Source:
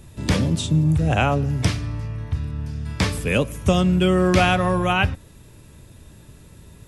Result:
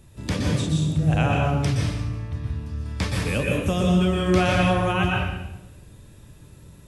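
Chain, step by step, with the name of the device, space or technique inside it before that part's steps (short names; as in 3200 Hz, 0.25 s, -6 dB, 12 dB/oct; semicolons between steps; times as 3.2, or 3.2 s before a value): bathroom (reverb RT60 0.95 s, pre-delay 0.114 s, DRR -1.5 dB); gain -6.5 dB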